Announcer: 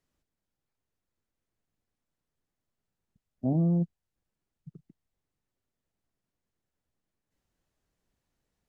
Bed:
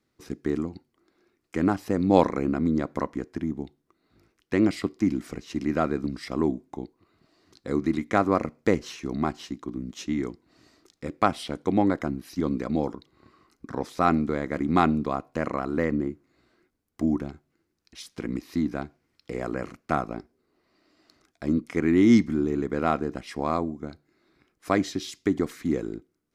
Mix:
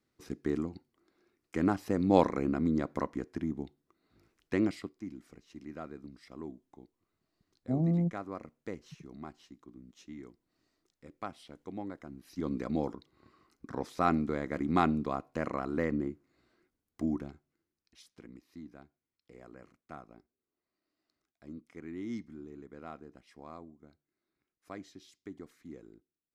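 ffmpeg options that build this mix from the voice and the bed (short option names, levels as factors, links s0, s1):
-filter_complex "[0:a]adelay=4250,volume=0.708[s0];[1:a]volume=2.37,afade=t=out:st=4.48:d=0.47:silence=0.211349,afade=t=in:st=12.08:d=0.53:silence=0.237137,afade=t=out:st=16.77:d=1.57:silence=0.16788[s1];[s0][s1]amix=inputs=2:normalize=0"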